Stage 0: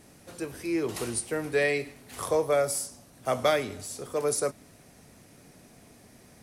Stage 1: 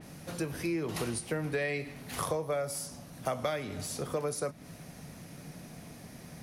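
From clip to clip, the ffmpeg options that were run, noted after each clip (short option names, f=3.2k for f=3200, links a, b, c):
-af "equalizer=f=160:t=o:w=0.33:g=10,equalizer=f=400:t=o:w=0.33:g=-4,equalizer=f=8k:t=o:w=0.33:g=-6,acompressor=threshold=-35dB:ratio=6,adynamicequalizer=threshold=0.00141:dfrequency=4300:dqfactor=0.7:tfrequency=4300:tqfactor=0.7:attack=5:release=100:ratio=0.375:range=2:mode=cutabove:tftype=highshelf,volume=5dB"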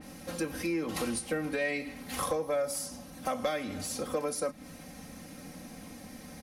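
-af "aecho=1:1:3.8:0.81,asoftclip=type=tanh:threshold=-20dB"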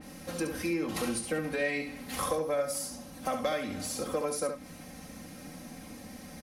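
-af "aecho=1:1:70:0.422"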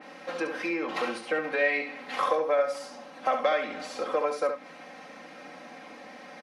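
-af "highpass=530,lowpass=2.7k,volume=8dB"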